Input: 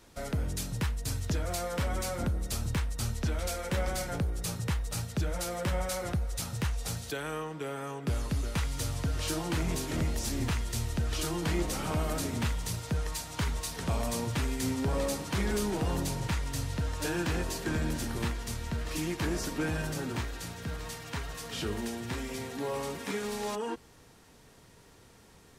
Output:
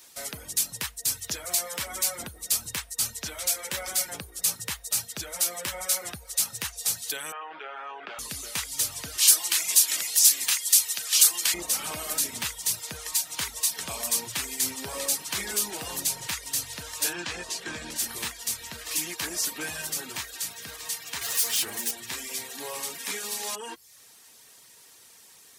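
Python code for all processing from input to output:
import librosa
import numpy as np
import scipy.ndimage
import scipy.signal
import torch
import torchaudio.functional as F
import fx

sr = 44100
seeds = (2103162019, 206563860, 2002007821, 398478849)

y = fx.chain(x, sr, fx.cabinet(low_hz=290.0, low_slope=24, high_hz=2800.0, hz=(290.0, 480.0, 770.0, 1400.0, 2000.0), db=(-9, -6, 5, 5, -3)),
    fx.env_flatten(amount_pct=70), at=(7.32, 8.19))
y = fx.chain(y, sr, fx.highpass(hz=1100.0, slope=6),
    fx.high_shelf(hz=2100.0, db=8.5), at=(9.18, 11.54))
y = fx.chain(y, sr, fx.air_absorb(metres=69.0),
    fx.doubler(ms=17.0, db=-13.0), at=(17.13, 17.96))
y = fx.chain(y, sr, fx.lower_of_two(delay_ms=8.7),
    fx.high_shelf(hz=4900.0, db=4.5),
    fx.env_flatten(amount_pct=70), at=(21.21, 21.91))
y = fx.dereverb_blind(y, sr, rt60_s=0.53)
y = fx.tilt_eq(y, sr, slope=4.5)
y = fx.notch(y, sr, hz=1400.0, q=26.0)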